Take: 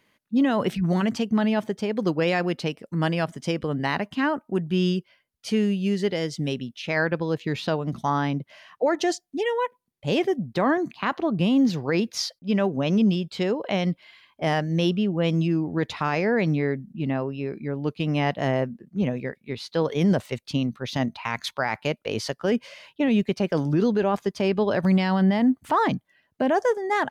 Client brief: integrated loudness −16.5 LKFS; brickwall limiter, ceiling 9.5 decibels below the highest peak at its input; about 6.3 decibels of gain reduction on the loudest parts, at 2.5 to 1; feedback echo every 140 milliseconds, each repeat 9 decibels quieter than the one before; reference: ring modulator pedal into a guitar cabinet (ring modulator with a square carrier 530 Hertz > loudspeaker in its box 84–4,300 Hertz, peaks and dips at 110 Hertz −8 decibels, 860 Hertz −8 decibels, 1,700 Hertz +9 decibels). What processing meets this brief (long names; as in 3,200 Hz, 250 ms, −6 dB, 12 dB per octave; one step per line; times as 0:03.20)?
downward compressor 2.5 to 1, threshold −26 dBFS
brickwall limiter −23 dBFS
repeating echo 140 ms, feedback 35%, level −9 dB
ring modulator with a square carrier 530 Hz
loudspeaker in its box 84–4,300 Hz, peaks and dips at 110 Hz −8 dB, 860 Hz −8 dB, 1,700 Hz +9 dB
level +14.5 dB